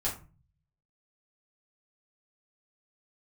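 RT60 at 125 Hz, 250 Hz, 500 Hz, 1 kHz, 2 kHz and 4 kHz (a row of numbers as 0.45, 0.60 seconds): 0.95, 0.65, 0.35, 0.35, 0.30, 0.20 seconds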